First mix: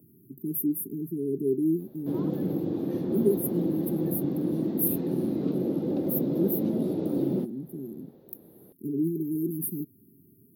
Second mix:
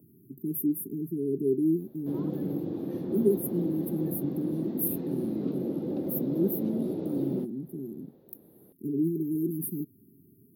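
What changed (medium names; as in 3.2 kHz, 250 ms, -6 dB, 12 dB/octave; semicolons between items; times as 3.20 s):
background -4.0 dB; master: add treble shelf 5.5 kHz -3.5 dB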